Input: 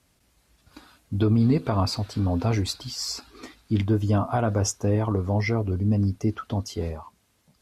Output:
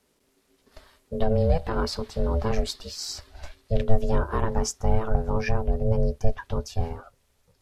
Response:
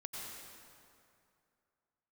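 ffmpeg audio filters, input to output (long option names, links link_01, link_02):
-af "aeval=exprs='val(0)*sin(2*PI*330*n/s)':channel_layout=same,asubboost=boost=8.5:cutoff=74"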